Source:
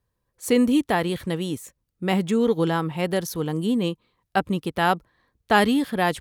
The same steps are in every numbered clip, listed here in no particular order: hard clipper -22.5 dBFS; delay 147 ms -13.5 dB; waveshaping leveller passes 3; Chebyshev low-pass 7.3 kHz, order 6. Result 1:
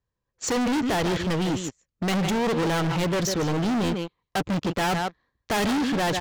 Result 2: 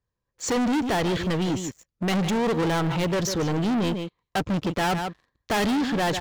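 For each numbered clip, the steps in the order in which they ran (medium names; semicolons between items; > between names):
delay > waveshaping leveller > Chebyshev low-pass > hard clipper; Chebyshev low-pass > hard clipper > delay > waveshaping leveller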